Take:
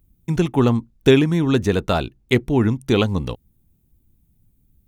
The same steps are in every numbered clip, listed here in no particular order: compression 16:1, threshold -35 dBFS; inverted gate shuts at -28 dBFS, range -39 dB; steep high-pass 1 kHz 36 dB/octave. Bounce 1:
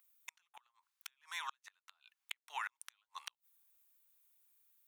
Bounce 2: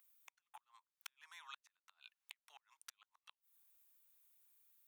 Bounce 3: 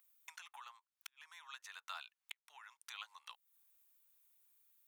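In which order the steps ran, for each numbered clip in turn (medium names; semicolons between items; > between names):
steep high-pass > compression > inverted gate; compression > inverted gate > steep high-pass; compression > steep high-pass > inverted gate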